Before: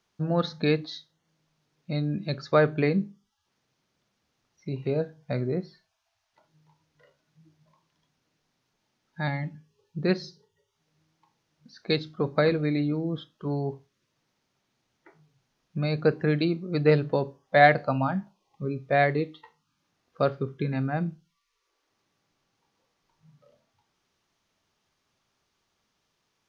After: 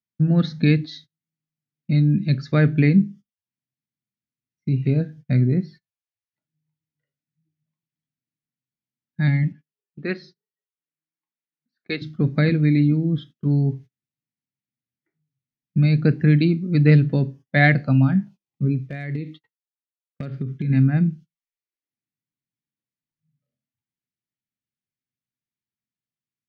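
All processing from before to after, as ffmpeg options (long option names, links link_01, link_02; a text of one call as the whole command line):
ffmpeg -i in.wav -filter_complex "[0:a]asettb=1/sr,asplit=3[link_01][link_02][link_03];[link_01]atrim=end=9.524[link_04];[link_02]atrim=start=9.52:end=12.02,asetpts=PTS-STARTPTS,afade=type=in:duration=0.004:curve=qsin,afade=type=out:start_time=2.496:duration=0.004:curve=qsin,highpass=410,lowpass=3200,equalizer=frequency=1200:width=3.5:gain=5[link_05];[link_03]atrim=start=12.016[link_06];[link_04][link_05]acrossfade=duration=0.004:curve1=hsin:curve2=qsin[link_07];[link_07][link_06]acrossfade=duration=0.004:curve1=qsin:curve2=hsin,asettb=1/sr,asplit=3[link_08][link_09][link_10];[link_08]atrim=end=18.754[link_11];[link_09]atrim=start=18.75:end=20.7,asetpts=PTS-STARTPTS,afade=type=in:duration=0.004:curve=qsin,afade=type=out:start_time=1.946:duration=0.004:curve=qsin,agate=range=-33dB:threshold=-49dB:ratio=3:release=100:detection=peak,acompressor=threshold=-30dB:ratio=16:attack=3.2:release=140:knee=1:detection=peak,asoftclip=type=hard:threshold=-26.5dB[link_12];[link_10]atrim=start=20.696[link_13];[link_11][link_12]acrossfade=duration=0.004:curve1=hsin:curve2=qsin[link_14];[link_14][link_13]acrossfade=duration=0.004:curve1=qsin:curve2=hsin,agate=range=-27dB:threshold=-47dB:ratio=16:detection=peak,equalizer=frequency=125:width_type=o:width=1:gain=12,equalizer=frequency=250:width_type=o:width=1:gain=10,equalizer=frequency=500:width_type=o:width=1:gain=-5,equalizer=frequency=1000:width_type=o:width=1:gain=-11,equalizer=frequency=2000:width_type=o:width=1:gain=8" out.wav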